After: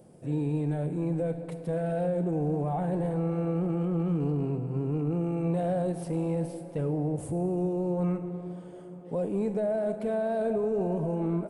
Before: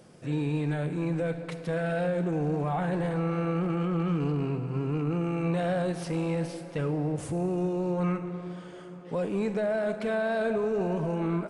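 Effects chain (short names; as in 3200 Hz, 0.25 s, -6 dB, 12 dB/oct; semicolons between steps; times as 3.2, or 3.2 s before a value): band shelf 2700 Hz -11.5 dB 2.9 oct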